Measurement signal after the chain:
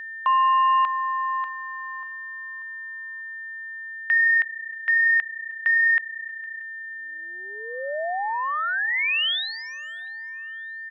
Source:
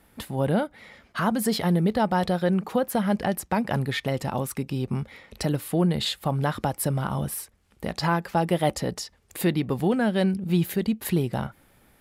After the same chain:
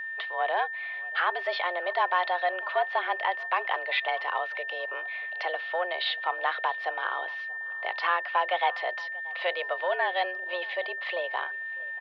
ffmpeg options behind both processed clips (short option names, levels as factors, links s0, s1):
-filter_complex "[0:a]highshelf=f=2500:g=10.5,asoftclip=type=tanh:threshold=0.188,highpass=f=380:t=q:w=0.5412,highpass=f=380:t=q:w=1.307,lowpass=f=3200:t=q:w=0.5176,lowpass=f=3200:t=q:w=0.7071,lowpass=f=3200:t=q:w=1.932,afreqshift=180,asplit=2[s0][s1];[s1]adelay=633,lowpass=f=2600:p=1,volume=0.0841,asplit=2[s2][s3];[s3]adelay=633,lowpass=f=2600:p=1,volume=0.46,asplit=2[s4][s5];[s5]adelay=633,lowpass=f=2600:p=1,volume=0.46[s6];[s0][s2][s4][s6]amix=inputs=4:normalize=0,aeval=exprs='val(0)+0.0224*sin(2*PI*1800*n/s)':c=same"